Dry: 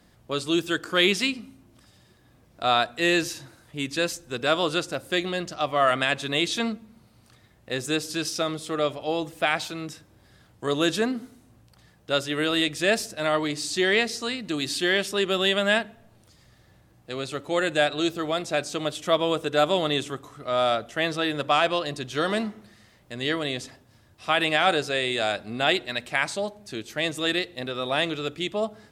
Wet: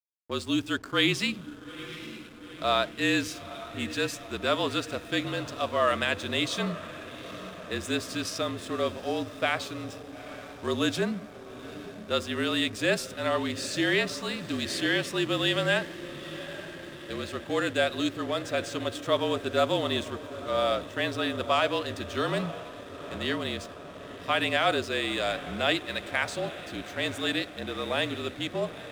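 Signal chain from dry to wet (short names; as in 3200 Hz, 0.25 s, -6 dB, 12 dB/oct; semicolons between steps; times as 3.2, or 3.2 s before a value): diffused feedback echo 0.878 s, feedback 69%, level -13.5 dB; frequency shift -42 Hz; backlash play -39 dBFS; gain -3.5 dB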